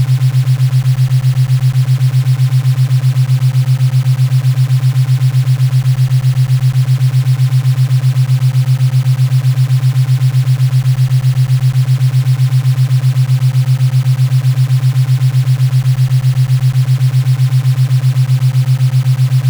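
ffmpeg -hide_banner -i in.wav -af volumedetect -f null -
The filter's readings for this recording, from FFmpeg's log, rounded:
mean_volume: -10.3 dB
max_volume: -3.5 dB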